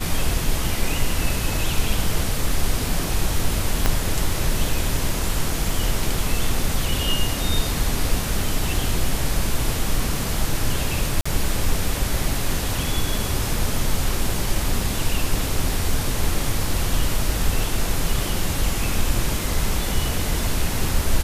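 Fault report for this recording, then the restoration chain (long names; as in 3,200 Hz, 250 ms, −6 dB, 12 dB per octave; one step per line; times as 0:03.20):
0:03.86: click −4 dBFS
0:11.21–0:11.26: drop-out 45 ms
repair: click removal
repair the gap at 0:11.21, 45 ms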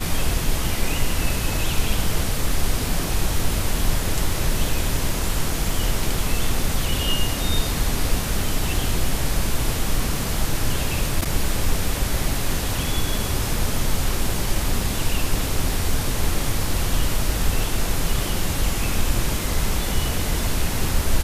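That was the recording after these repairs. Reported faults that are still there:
0:03.86: click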